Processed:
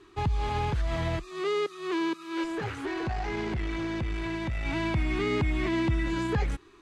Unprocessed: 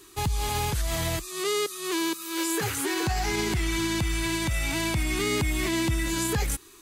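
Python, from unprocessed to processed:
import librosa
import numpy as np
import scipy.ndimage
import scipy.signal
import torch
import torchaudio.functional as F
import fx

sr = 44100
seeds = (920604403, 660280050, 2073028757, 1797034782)

y = fx.tube_stage(x, sr, drive_db=25.0, bias=0.4, at=(2.44, 4.66))
y = scipy.signal.sosfilt(scipy.signal.bessel(2, 2000.0, 'lowpass', norm='mag', fs=sr, output='sos'), y)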